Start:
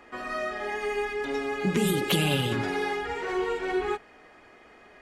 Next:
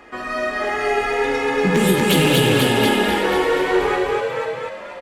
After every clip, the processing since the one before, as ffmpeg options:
-filter_complex "[0:a]asplit=2[s0][s1];[s1]asplit=4[s2][s3][s4][s5];[s2]adelay=489,afreqshift=82,volume=0.596[s6];[s3]adelay=978,afreqshift=164,volume=0.202[s7];[s4]adelay=1467,afreqshift=246,volume=0.0692[s8];[s5]adelay=1956,afreqshift=328,volume=0.0234[s9];[s6][s7][s8][s9]amix=inputs=4:normalize=0[s10];[s0][s10]amix=inputs=2:normalize=0,asoftclip=type=hard:threshold=0.119,asplit=2[s11][s12];[s12]aecho=0:1:49.56|239.1:0.316|0.794[s13];[s11][s13]amix=inputs=2:normalize=0,volume=2.24"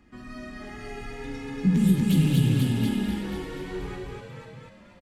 -af "firequalizer=gain_entry='entry(190,0);entry(450,-23);entry(4500,-14)':delay=0.05:min_phase=1"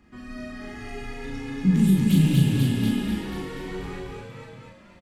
-filter_complex "[0:a]asplit=2[s0][s1];[s1]adelay=37,volume=0.708[s2];[s0][s2]amix=inputs=2:normalize=0"

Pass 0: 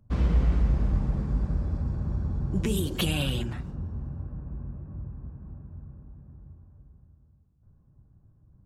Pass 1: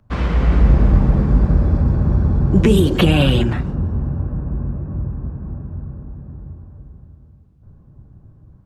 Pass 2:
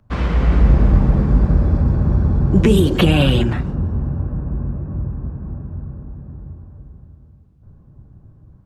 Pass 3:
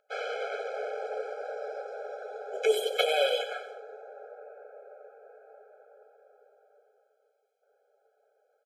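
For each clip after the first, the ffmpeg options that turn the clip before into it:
-filter_complex "[0:a]equalizer=f=1700:w=0.32:g=12,acrossover=split=570|2300[s0][s1][s2];[s0]dynaudnorm=f=340:g=3:m=3.55[s3];[s2]alimiter=limit=0.119:level=0:latency=1:release=486[s4];[s3][s1][s4]amix=inputs=3:normalize=0,volume=1.33"
-af anull
-af "asoftclip=type=tanh:threshold=0.596,aecho=1:1:93|186|279|372:0.237|0.107|0.048|0.0216,afftfilt=real='re*eq(mod(floor(b*sr/1024/430),2),1)':imag='im*eq(mod(floor(b*sr/1024/430),2),1)':win_size=1024:overlap=0.75,volume=0.75"

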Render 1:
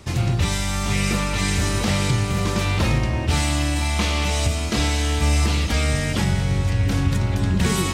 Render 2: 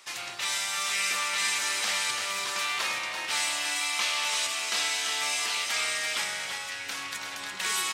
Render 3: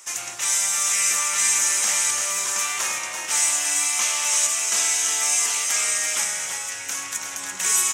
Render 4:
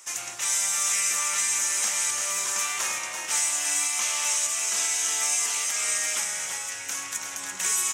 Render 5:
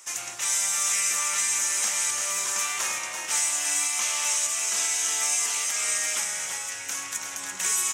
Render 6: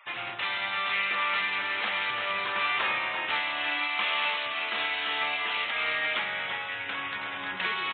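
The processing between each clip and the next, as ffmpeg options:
-af "highpass=1200,aecho=1:1:338:0.501,volume=0.841"
-af "highshelf=f=5300:t=q:w=3:g=7,flanger=delay=8.5:depth=2.7:regen=82:speed=0.45:shape=sinusoidal,volume=2.24"
-af "alimiter=limit=0.266:level=0:latency=1:release=207,volume=0.708"
-af anull
-af "aresample=8000,aresample=44100,afftfilt=real='re*gte(hypot(re,im),0.00178)':imag='im*gte(hypot(re,im),0.00178)':win_size=1024:overlap=0.75,volume=1.78"

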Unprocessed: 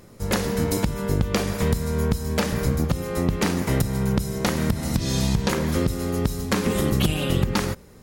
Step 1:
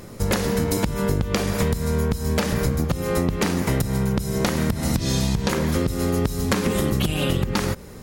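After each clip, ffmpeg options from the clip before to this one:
-af "acompressor=threshold=0.0447:ratio=6,volume=2.66"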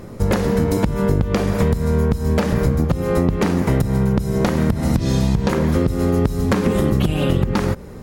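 -af "highshelf=f=2100:g=-11,volume=1.78"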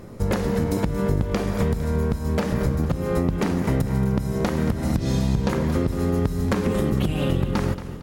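-af "aecho=1:1:228|456|684|912|1140|1368:0.224|0.121|0.0653|0.0353|0.019|0.0103,volume=0.562"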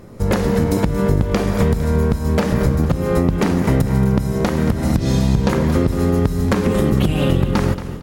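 -af "dynaudnorm=f=140:g=3:m=2.11"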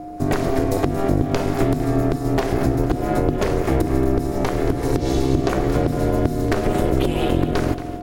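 -af "aeval=exprs='val(0)+0.0398*sin(2*PI*510*n/s)':c=same,aeval=exprs='val(0)*sin(2*PI*200*n/s)':c=same"

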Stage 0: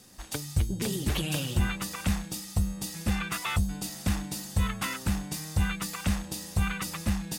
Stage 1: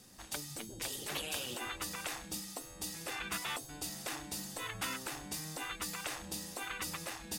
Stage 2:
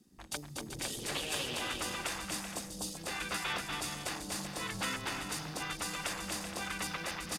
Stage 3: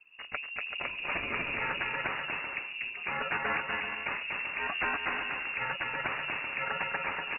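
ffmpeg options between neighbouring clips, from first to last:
-af "afftfilt=real='re*lt(hypot(re,im),0.1)':imag='im*lt(hypot(re,im),0.1)':win_size=1024:overlap=0.75,volume=0.631"
-af "afwtdn=0.00355,aecho=1:1:240|384|470.4|522.2|553.3:0.631|0.398|0.251|0.158|0.1,volume=1.26"
-af "lowpass=f=2500:t=q:w=0.5098,lowpass=f=2500:t=q:w=0.6013,lowpass=f=2500:t=q:w=0.9,lowpass=f=2500:t=q:w=2.563,afreqshift=-2900,volume=2.11"

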